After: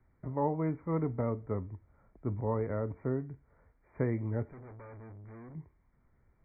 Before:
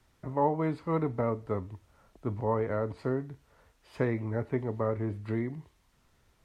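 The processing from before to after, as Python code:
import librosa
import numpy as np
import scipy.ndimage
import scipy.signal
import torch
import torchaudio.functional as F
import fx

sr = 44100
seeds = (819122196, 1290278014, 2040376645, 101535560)

y = fx.low_shelf(x, sr, hz=420.0, db=8.0)
y = fx.tube_stage(y, sr, drive_db=40.0, bias=0.55, at=(4.51, 5.55))
y = fx.brickwall_lowpass(y, sr, high_hz=2400.0)
y = F.gain(torch.from_numpy(y), -7.5).numpy()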